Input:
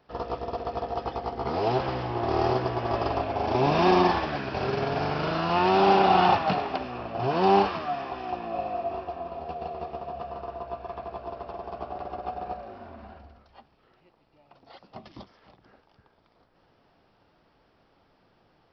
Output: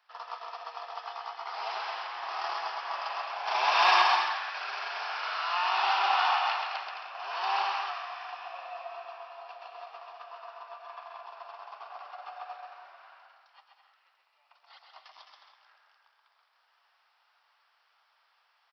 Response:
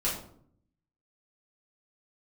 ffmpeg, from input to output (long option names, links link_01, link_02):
-filter_complex "[0:a]highpass=frequency=980:width=0.5412,highpass=frequency=980:width=1.3066,asettb=1/sr,asplit=3[link_01][link_02][link_03];[link_01]atrim=end=3.464[link_04];[link_02]atrim=start=3.46:end=4.02,asetpts=PTS-STARTPTS,afade=type=in:duration=0.004:curve=qsin,afade=type=out:start_time=0.556:duration=0.004:curve=qsin,aeval=exprs='0.355*sin(PI/2*1.41*val(0)/0.355)':channel_layout=same[link_05];[link_03]atrim=start=4.016[link_06];[link_04][link_05]acrossfade=duration=0.004:curve1=hsin:curve2=qsin[link_07];[link_07][link_06]acrossfade=duration=0.004:curve1=qsin:curve2=hsin,aecho=1:1:130|214.5|269.4|305.1|328.3:0.631|0.398|0.251|0.158|0.1,volume=-1.5dB"